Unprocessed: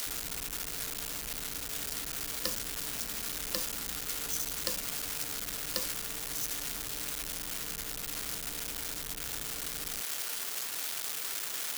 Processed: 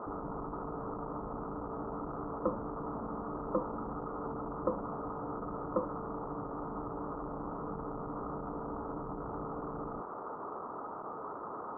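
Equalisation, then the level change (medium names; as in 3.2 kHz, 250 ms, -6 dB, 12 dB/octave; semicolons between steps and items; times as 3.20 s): rippled Chebyshev low-pass 1.3 kHz, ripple 3 dB; bass shelf 80 Hz -11.5 dB; +11.5 dB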